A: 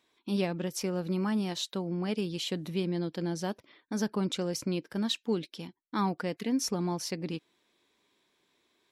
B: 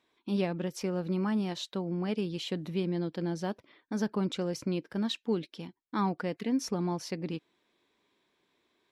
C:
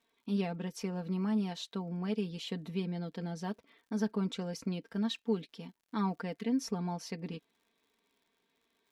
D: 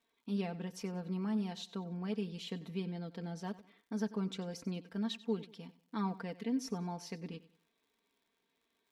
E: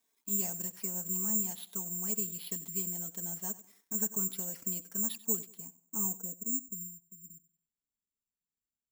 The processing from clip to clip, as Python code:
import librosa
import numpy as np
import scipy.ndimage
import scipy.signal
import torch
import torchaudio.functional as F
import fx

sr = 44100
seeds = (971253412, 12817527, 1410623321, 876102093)

y1 = fx.high_shelf(x, sr, hz=5100.0, db=-10.5)
y2 = y1 + 0.7 * np.pad(y1, (int(4.4 * sr / 1000.0), 0))[:len(y1)]
y2 = fx.dmg_crackle(y2, sr, seeds[0], per_s=76.0, level_db=-55.0)
y2 = F.gain(torch.from_numpy(y2), -5.5).numpy()
y3 = fx.echo_feedback(y2, sr, ms=94, feedback_pct=33, wet_db=-17.5)
y3 = F.gain(torch.from_numpy(y3), -3.5).numpy()
y4 = fx.filter_sweep_lowpass(y3, sr, from_hz=3900.0, to_hz=100.0, start_s=5.27, end_s=6.97, q=0.73)
y4 = (np.kron(y4[::6], np.eye(6)[0]) * 6)[:len(y4)]
y4 = fx.notch(y4, sr, hz=500.0, q=12.0)
y4 = F.gain(torch.from_numpy(y4), -4.5).numpy()